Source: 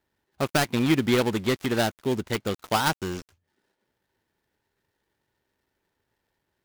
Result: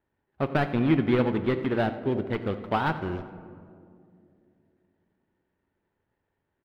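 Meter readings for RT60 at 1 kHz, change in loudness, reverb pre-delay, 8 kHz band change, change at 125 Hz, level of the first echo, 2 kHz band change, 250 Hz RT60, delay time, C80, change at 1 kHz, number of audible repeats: 2.0 s, -1.5 dB, 7 ms, under -25 dB, +1.0 dB, -16.5 dB, -4.0 dB, 3.5 s, 89 ms, 11.5 dB, -1.5 dB, 1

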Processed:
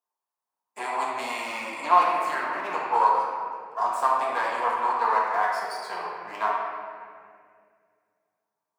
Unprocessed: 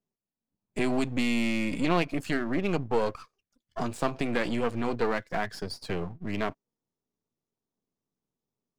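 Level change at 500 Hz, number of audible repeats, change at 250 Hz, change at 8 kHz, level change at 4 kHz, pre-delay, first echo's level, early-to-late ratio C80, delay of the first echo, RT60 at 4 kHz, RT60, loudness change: -1.0 dB, no echo, -15.5 dB, no reading, -1.5 dB, 4 ms, no echo, 1.0 dB, no echo, 1.4 s, 2.1 s, +4.0 dB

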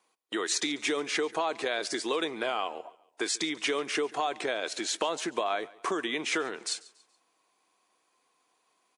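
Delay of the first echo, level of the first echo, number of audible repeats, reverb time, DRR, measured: 141 ms, -21.5 dB, 2, no reverb, no reverb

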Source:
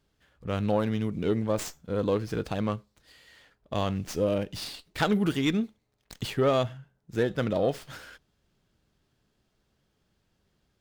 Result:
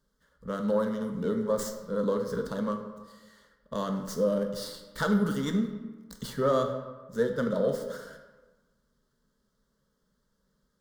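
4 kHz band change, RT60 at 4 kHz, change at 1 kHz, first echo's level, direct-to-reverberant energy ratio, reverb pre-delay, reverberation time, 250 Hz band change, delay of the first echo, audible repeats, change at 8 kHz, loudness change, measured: -6.0 dB, 0.80 s, -1.5 dB, no echo, 4.5 dB, 11 ms, 1.3 s, -0.5 dB, no echo, no echo, -0.5 dB, -1.0 dB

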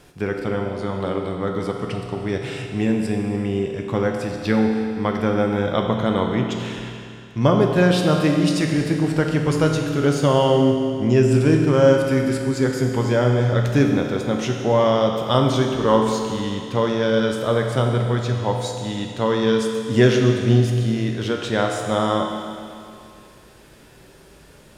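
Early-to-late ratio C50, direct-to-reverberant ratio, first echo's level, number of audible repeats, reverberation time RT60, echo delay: 3.5 dB, 1.5 dB, no echo, no echo, 2.4 s, no echo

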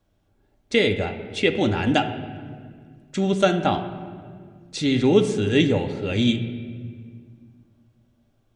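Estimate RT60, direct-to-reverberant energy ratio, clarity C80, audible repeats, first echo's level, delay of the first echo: 1.9 s, 6.0 dB, 11.0 dB, no echo, no echo, no echo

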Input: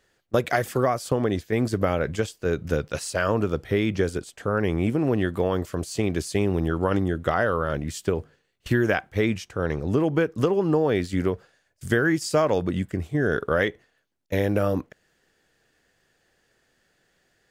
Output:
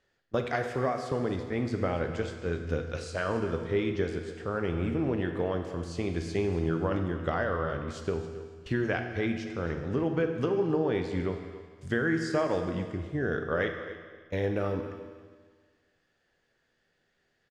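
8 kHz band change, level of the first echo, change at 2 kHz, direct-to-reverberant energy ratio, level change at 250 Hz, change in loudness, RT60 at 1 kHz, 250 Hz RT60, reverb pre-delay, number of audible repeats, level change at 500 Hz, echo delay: -13.5 dB, -15.5 dB, -6.0 dB, 4.5 dB, -6.0 dB, -6.0 dB, 1.6 s, 1.6 s, 12 ms, 2, -6.0 dB, 273 ms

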